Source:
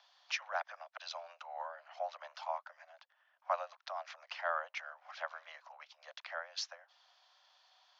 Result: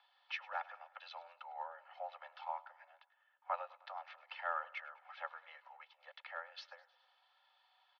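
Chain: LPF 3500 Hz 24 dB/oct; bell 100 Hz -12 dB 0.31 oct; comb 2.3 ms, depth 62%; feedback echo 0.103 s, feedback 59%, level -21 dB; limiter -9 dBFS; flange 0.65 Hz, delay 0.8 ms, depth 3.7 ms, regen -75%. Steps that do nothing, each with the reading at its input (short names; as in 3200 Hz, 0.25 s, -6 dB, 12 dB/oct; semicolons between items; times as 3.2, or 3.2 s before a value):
bell 100 Hz: input band starts at 450 Hz; limiter -9 dBFS: input peak -19.5 dBFS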